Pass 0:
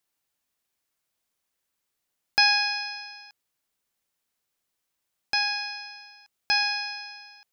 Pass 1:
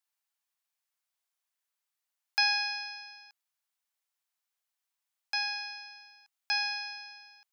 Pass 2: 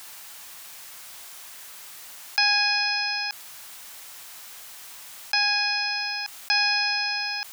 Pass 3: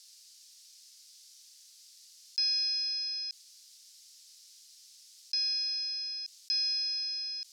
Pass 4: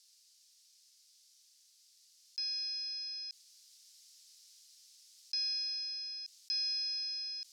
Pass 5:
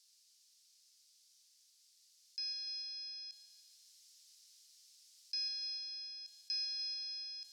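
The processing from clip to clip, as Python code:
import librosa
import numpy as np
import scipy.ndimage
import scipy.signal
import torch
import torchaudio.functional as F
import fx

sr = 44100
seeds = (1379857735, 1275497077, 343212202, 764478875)

y1 = scipy.signal.sosfilt(scipy.signal.butter(4, 690.0, 'highpass', fs=sr, output='sos'), x)
y1 = y1 * 10.0 ** (-6.5 / 20.0)
y2 = fx.env_flatten(y1, sr, amount_pct=70)
y2 = y2 * 10.0 ** (4.0 / 20.0)
y3 = fx.ladder_bandpass(y2, sr, hz=5700.0, resonance_pct=50)
y4 = fx.rider(y3, sr, range_db=10, speed_s=2.0)
y4 = y4 * 10.0 ** (-6.0 / 20.0)
y5 = fx.echo_feedback(y4, sr, ms=147, feedback_pct=58, wet_db=-11)
y5 = y5 * 10.0 ** (-3.5 / 20.0)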